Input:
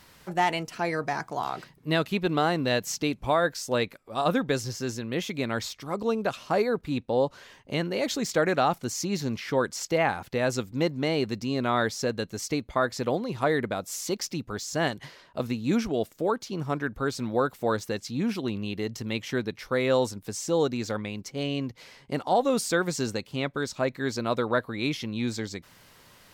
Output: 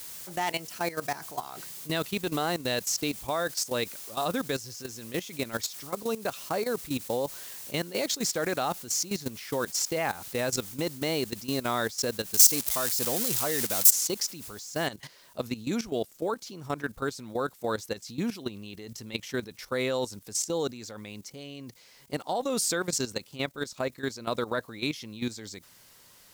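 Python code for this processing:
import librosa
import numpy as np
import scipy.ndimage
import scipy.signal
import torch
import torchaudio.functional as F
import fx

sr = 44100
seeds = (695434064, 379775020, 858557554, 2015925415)

y = fx.crossing_spikes(x, sr, level_db=-17.5, at=(12.34, 13.91))
y = fx.noise_floor_step(y, sr, seeds[0], at_s=14.87, before_db=-48, after_db=-65, tilt_db=0.0)
y = fx.bass_treble(y, sr, bass_db=-2, treble_db=9)
y = fx.level_steps(y, sr, step_db=14)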